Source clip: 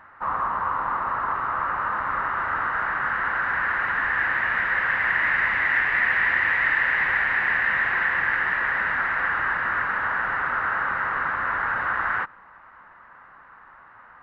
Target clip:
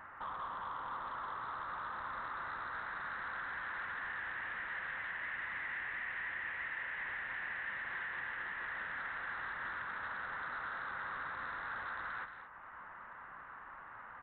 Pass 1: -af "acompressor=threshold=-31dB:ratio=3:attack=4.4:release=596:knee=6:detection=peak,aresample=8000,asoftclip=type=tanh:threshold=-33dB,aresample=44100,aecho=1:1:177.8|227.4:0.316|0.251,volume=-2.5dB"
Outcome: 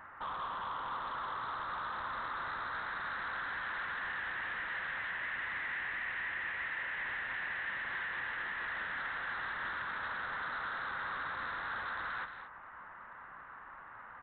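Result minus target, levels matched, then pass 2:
downward compressor: peak gain reduction −5 dB
-af "acompressor=threshold=-38.5dB:ratio=3:attack=4.4:release=596:knee=6:detection=peak,aresample=8000,asoftclip=type=tanh:threshold=-33dB,aresample=44100,aecho=1:1:177.8|227.4:0.316|0.251,volume=-2.5dB"

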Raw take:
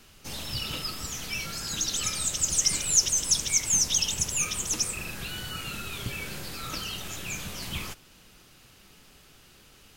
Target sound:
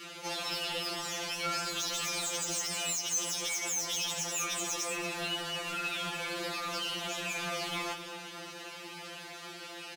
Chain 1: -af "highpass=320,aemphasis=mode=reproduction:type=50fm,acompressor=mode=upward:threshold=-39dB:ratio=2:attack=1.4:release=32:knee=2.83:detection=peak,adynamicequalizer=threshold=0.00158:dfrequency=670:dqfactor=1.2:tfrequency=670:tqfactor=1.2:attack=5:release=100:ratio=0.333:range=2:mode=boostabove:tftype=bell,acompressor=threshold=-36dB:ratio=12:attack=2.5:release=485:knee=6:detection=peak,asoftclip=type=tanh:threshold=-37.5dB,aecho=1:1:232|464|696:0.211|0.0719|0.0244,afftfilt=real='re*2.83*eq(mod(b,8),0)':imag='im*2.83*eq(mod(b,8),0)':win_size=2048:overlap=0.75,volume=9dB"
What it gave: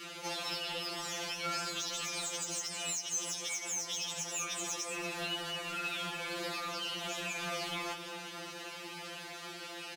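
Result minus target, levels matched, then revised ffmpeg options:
downward compressor: peak gain reduction +9 dB
-af "highpass=320,aemphasis=mode=reproduction:type=50fm,acompressor=mode=upward:threshold=-39dB:ratio=2:attack=1.4:release=32:knee=2.83:detection=peak,adynamicequalizer=threshold=0.00158:dfrequency=670:dqfactor=1.2:tfrequency=670:tqfactor=1.2:attack=5:release=100:ratio=0.333:range=2:mode=boostabove:tftype=bell,acompressor=threshold=-26dB:ratio=12:attack=2.5:release=485:knee=6:detection=peak,asoftclip=type=tanh:threshold=-37.5dB,aecho=1:1:232|464|696:0.211|0.0719|0.0244,afftfilt=real='re*2.83*eq(mod(b,8),0)':imag='im*2.83*eq(mod(b,8),0)':win_size=2048:overlap=0.75,volume=9dB"

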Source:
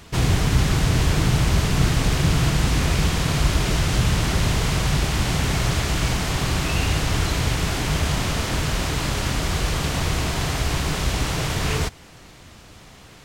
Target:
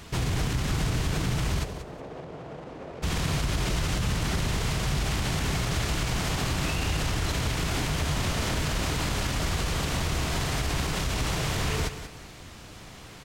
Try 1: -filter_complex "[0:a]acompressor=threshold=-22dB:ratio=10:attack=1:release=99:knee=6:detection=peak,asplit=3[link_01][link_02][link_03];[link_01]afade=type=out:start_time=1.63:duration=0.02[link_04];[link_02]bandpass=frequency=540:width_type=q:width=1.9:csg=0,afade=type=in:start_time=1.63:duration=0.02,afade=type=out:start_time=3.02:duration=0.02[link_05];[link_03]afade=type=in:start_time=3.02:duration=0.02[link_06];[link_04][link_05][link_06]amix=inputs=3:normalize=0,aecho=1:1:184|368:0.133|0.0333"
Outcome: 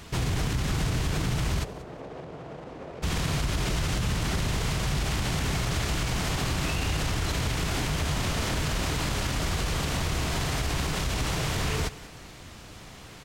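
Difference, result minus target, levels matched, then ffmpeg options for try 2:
echo-to-direct −6.5 dB
-filter_complex "[0:a]acompressor=threshold=-22dB:ratio=10:attack=1:release=99:knee=6:detection=peak,asplit=3[link_01][link_02][link_03];[link_01]afade=type=out:start_time=1.63:duration=0.02[link_04];[link_02]bandpass=frequency=540:width_type=q:width=1.9:csg=0,afade=type=in:start_time=1.63:duration=0.02,afade=type=out:start_time=3.02:duration=0.02[link_05];[link_03]afade=type=in:start_time=3.02:duration=0.02[link_06];[link_04][link_05][link_06]amix=inputs=3:normalize=0,aecho=1:1:184|368|552:0.282|0.0705|0.0176"

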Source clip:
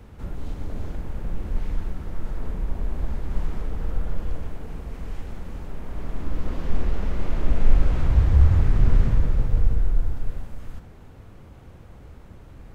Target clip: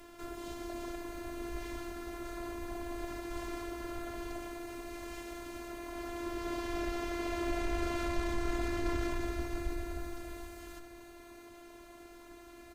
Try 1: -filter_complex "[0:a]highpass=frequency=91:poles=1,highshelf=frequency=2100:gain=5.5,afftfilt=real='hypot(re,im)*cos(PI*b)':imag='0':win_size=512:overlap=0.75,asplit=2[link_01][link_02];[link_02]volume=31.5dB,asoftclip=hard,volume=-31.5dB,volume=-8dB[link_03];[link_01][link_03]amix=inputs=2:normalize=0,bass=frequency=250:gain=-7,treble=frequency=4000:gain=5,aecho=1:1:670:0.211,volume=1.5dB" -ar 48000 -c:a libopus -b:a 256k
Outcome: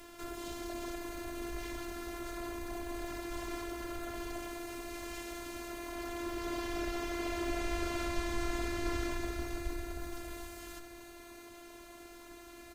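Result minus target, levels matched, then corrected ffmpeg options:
gain into a clipping stage and back: distortion +11 dB; 4,000 Hz band +3.0 dB
-filter_complex "[0:a]highpass=frequency=91:poles=1,afftfilt=real='hypot(re,im)*cos(PI*b)':imag='0':win_size=512:overlap=0.75,asplit=2[link_01][link_02];[link_02]volume=22dB,asoftclip=hard,volume=-22dB,volume=-8dB[link_03];[link_01][link_03]amix=inputs=2:normalize=0,bass=frequency=250:gain=-7,treble=frequency=4000:gain=5,aecho=1:1:670:0.211,volume=1.5dB" -ar 48000 -c:a libopus -b:a 256k

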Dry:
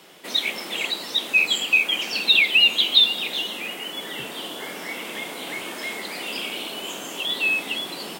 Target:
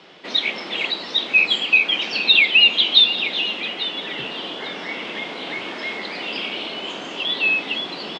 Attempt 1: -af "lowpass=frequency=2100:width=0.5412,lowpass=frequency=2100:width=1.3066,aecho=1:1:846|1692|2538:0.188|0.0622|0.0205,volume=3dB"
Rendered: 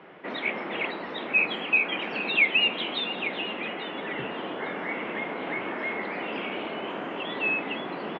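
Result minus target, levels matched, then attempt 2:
4,000 Hz band −5.5 dB
-af "lowpass=frequency=4800:width=0.5412,lowpass=frequency=4800:width=1.3066,aecho=1:1:846|1692|2538:0.188|0.0622|0.0205,volume=3dB"

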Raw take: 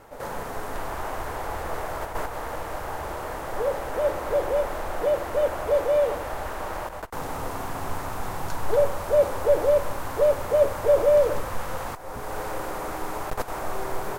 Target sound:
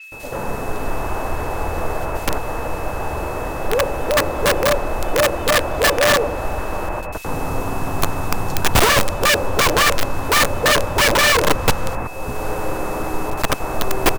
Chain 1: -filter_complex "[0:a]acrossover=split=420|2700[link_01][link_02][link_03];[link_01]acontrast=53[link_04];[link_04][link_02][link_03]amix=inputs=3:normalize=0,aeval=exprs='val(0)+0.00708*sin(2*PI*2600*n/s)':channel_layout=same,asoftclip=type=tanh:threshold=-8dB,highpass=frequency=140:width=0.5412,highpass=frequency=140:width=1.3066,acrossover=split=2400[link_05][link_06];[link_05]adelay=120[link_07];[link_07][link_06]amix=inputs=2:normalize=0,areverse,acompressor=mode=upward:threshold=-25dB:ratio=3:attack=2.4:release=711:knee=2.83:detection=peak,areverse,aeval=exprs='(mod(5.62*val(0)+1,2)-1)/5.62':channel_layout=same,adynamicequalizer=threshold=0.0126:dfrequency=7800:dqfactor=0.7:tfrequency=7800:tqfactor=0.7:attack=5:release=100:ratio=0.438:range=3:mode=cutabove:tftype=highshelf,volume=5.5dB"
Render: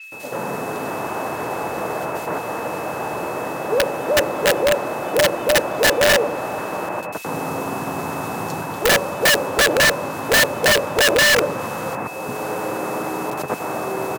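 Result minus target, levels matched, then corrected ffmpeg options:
125 Hz band −6.5 dB
-filter_complex "[0:a]acrossover=split=420|2700[link_01][link_02][link_03];[link_01]acontrast=53[link_04];[link_04][link_02][link_03]amix=inputs=3:normalize=0,aeval=exprs='val(0)+0.00708*sin(2*PI*2600*n/s)':channel_layout=same,asoftclip=type=tanh:threshold=-8dB,acrossover=split=2400[link_05][link_06];[link_05]adelay=120[link_07];[link_07][link_06]amix=inputs=2:normalize=0,areverse,acompressor=mode=upward:threshold=-25dB:ratio=3:attack=2.4:release=711:knee=2.83:detection=peak,areverse,aeval=exprs='(mod(5.62*val(0)+1,2)-1)/5.62':channel_layout=same,adynamicequalizer=threshold=0.0126:dfrequency=7800:dqfactor=0.7:tfrequency=7800:tqfactor=0.7:attack=5:release=100:ratio=0.438:range=3:mode=cutabove:tftype=highshelf,volume=5.5dB"

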